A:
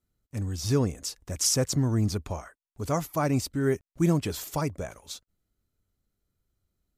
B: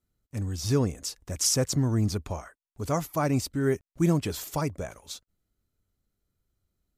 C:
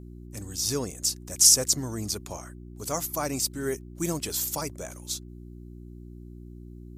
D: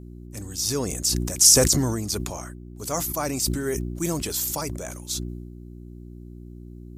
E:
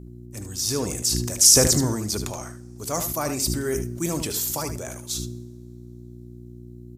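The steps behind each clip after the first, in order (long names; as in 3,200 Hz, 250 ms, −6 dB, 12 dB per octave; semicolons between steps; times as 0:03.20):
no processing that can be heard
bass and treble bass −9 dB, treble +13 dB; hum with harmonics 60 Hz, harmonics 6, −41 dBFS −4 dB per octave; level −2.5 dB
level that may fall only so fast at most 36 dB per second; level +2 dB
single-tap delay 75 ms −9 dB; on a send at −17 dB: convolution reverb, pre-delay 3 ms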